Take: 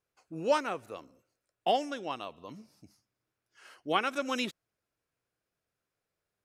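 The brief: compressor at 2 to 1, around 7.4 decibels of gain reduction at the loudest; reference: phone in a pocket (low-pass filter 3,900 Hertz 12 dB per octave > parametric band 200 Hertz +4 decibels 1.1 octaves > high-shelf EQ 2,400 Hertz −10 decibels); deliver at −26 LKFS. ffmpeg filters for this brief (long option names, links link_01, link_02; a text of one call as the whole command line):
ffmpeg -i in.wav -af "acompressor=threshold=-35dB:ratio=2,lowpass=3900,equalizer=frequency=200:width_type=o:width=1.1:gain=4,highshelf=frequency=2400:gain=-10,volume=13.5dB" out.wav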